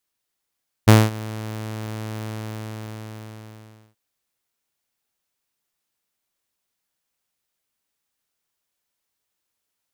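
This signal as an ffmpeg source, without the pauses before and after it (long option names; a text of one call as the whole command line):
ffmpeg -f lavfi -i "aevalsrc='0.631*(2*mod(109*t,1)-1)':duration=3.08:sample_rate=44100,afade=type=in:duration=0.017,afade=type=out:start_time=0.017:duration=0.213:silence=0.0794,afade=type=out:start_time=1.41:duration=1.67" out.wav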